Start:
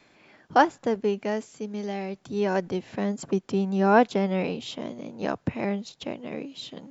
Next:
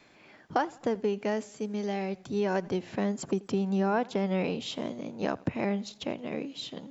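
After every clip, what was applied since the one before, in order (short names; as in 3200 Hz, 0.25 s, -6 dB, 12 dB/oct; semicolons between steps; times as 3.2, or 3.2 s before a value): compressor 6:1, threshold -24 dBFS, peak gain reduction 11.5 dB; warbling echo 84 ms, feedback 48%, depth 63 cents, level -23 dB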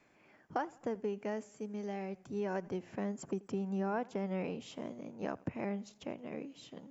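bell 3900 Hz -10.5 dB 0.67 oct; gain -8 dB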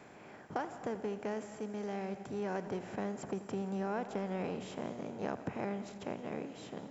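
per-bin compression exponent 0.6; reverb RT60 1.6 s, pre-delay 0.115 s, DRR 12 dB; gain -3.5 dB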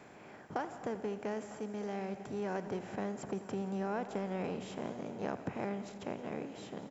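echo 0.95 s -18 dB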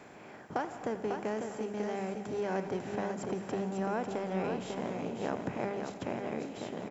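notches 50/100/150/200 Hz; echo 0.547 s -5.5 dB; gain +3 dB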